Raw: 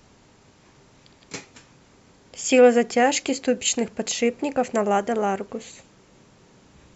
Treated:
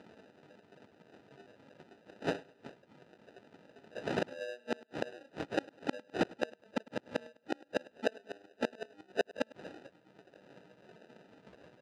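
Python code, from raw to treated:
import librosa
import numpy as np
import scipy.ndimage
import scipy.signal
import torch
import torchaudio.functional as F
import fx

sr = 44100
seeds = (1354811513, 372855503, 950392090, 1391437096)

p1 = fx.dereverb_blind(x, sr, rt60_s=0.73)
p2 = fx.peak_eq(p1, sr, hz=480.0, db=7.5, octaves=0.39)
p3 = fx.stretch_vocoder_free(p2, sr, factor=1.7)
p4 = fx.sample_hold(p3, sr, seeds[0], rate_hz=1100.0, jitter_pct=0)
p5 = fx.transient(p4, sr, attack_db=6, sustain_db=0)
p6 = fx.gate_flip(p5, sr, shuts_db=-18.0, range_db=-36)
p7 = fx.bandpass_edges(p6, sr, low_hz=200.0, high_hz=3900.0)
y = p7 + fx.echo_feedback(p7, sr, ms=102, feedback_pct=36, wet_db=-22.0, dry=0)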